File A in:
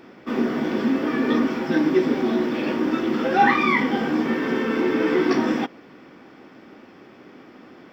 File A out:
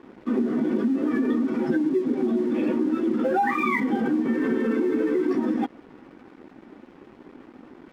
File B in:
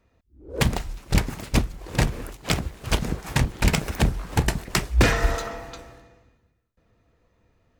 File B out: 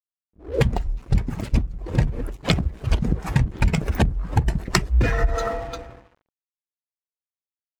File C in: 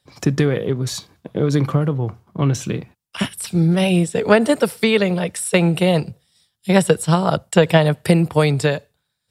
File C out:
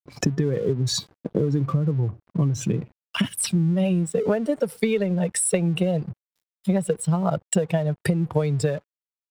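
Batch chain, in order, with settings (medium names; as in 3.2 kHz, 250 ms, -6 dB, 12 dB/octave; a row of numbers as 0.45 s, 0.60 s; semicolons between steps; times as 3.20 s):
spectral contrast enhancement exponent 1.6; compression 12:1, threshold -23 dBFS; crossover distortion -50.5 dBFS; normalise loudness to -24 LUFS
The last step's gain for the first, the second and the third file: +4.0 dB, +9.0 dB, +5.0 dB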